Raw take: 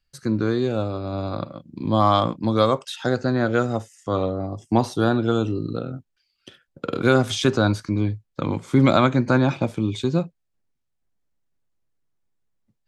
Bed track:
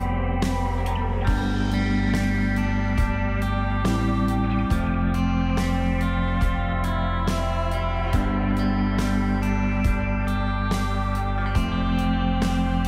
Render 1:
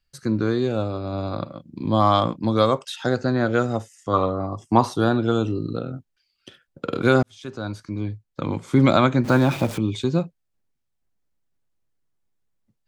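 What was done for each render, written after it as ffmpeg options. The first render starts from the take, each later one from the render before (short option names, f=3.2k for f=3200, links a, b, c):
-filter_complex "[0:a]asettb=1/sr,asplit=3[a][b][c];[a]atrim=end=4.134[d];[b]atrim=start=4.13:end=4.98,asetpts=PTS-STARTPTS,afade=t=in:d=0.004:c=qsin,afade=t=out:st=0.846:d=0.004:c=qsin,equalizer=f=1.1k:t=o:w=0.63:g=11[e];[c]atrim=start=4.976[f];[d][e]acrossfade=d=0.004:c1=hsin:c2=qsin[g];[g][f]acrossfade=d=0.004:c1=qsin:c2=hsin,asettb=1/sr,asplit=3[h][i][j];[h]atrim=end=9.244[k];[i]atrim=start=9.24:end=9.78,asetpts=PTS-STARTPTS,afade=t=in:d=0.004:c=qsin,afade=t=out:st=0.536:d=0.004:c=qsin,aeval=exprs='val(0)+0.5*0.0316*sgn(val(0))':c=same[l];[j]atrim=start=9.776[m];[k][l]acrossfade=d=0.004:c1=hsin:c2=qsin[n];[n][m]acrossfade=d=0.004:c1=qsin:c2=hsin,asplit=2[o][p];[o]atrim=end=7.23,asetpts=PTS-STARTPTS,afade=t=out:st=7.226:d=0.004:c=hsin[q];[p]atrim=start=7.23,asetpts=PTS-STARTPTS,afade=t=in:d=1.47[r];[q][r]concat=n=2:v=0:a=1"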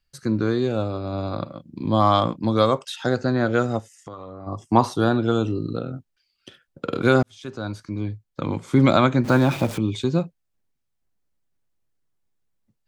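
-filter_complex "[0:a]asplit=3[a][b][c];[a]afade=t=out:st=3.79:d=0.02[d];[b]acompressor=threshold=-33dB:ratio=16:attack=3.2:release=140:knee=1:detection=peak,afade=t=in:st=3.79:d=0.02,afade=t=out:st=4.46:d=0.02[e];[c]afade=t=in:st=4.46:d=0.02[f];[d][e][f]amix=inputs=3:normalize=0"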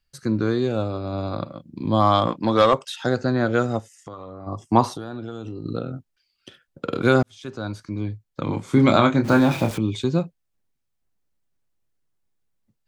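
-filter_complex "[0:a]asettb=1/sr,asplit=3[a][b][c];[a]atrim=end=2.274[d];[b]atrim=start=2.27:end=2.74,asetpts=PTS-STARTPTS,afade=t=in:d=0.004:c=qsin,afade=t=out:st=0.466:d=0.004:c=qsin,asplit=2[e][f];[f]highpass=f=720:p=1,volume=14dB,asoftclip=type=tanh:threshold=-5.5dB[g];[e][g]amix=inputs=2:normalize=0,lowpass=f=3.1k:p=1,volume=-6dB[h];[c]atrim=start=2.736[i];[d][h]acrossfade=d=0.004:c1=hsin:c2=qsin[j];[j][i]acrossfade=d=0.004:c1=qsin:c2=hsin,asettb=1/sr,asplit=3[k][l][m];[k]atrim=end=4.884[n];[l]atrim=start=4.88:end=5.66,asetpts=PTS-STARTPTS,afade=t=in:d=0.004:c=qsin,afade=t=out:st=0.776:d=0.004:c=qsin,acompressor=threshold=-28dB:ratio=12:attack=3.2:release=140:knee=1:detection=peak[o];[m]atrim=start=5.656[p];[n][o]acrossfade=d=0.004:c1=hsin:c2=qsin[q];[q][p]acrossfade=d=0.004:c1=qsin:c2=hsin,asettb=1/sr,asplit=3[r][s][t];[r]atrim=end=8.444[u];[s]atrim=start=8.44:end=9.71,asetpts=PTS-STARTPTS,afade=t=in:d=0.004:c=qsin,afade=t=out:st=1.266:d=0.004:c=qsin,asplit=2[v][w];[w]adelay=27,volume=-6.5dB[x];[v][x]amix=inputs=2:normalize=0,atrim=end_sample=56007[y];[t]atrim=start=9.706[z];[u][y]acrossfade=d=0.004:c1=hsin:c2=qsin[aa];[aa][z]acrossfade=d=0.004:c1=qsin:c2=hsin"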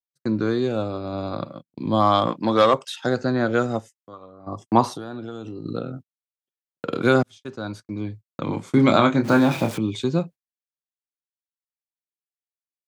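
-af "agate=range=-55dB:threshold=-36dB:ratio=16:detection=peak,highpass=120"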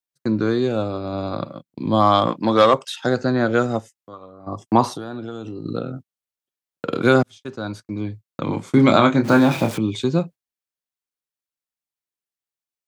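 -af "volume=2.5dB,alimiter=limit=-1dB:level=0:latency=1"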